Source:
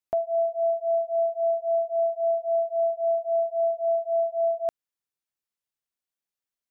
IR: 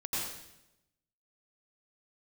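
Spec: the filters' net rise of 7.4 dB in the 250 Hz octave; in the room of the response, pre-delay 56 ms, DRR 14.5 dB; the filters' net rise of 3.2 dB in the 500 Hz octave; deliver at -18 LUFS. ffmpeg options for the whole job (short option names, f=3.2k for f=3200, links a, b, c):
-filter_complex "[0:a]equalizer=f=250:t=o:g=8.5,equalizer=f=500:t=o:g=4,asplit=2[a][b];[1:a]atrim=start_sample=2205,adelay=56[c];[b][c]afir=irnorm=-1:irlink=0,volume=-19dB[d];[a][d]amix=inputs=2:normalize=0,volume=4dB"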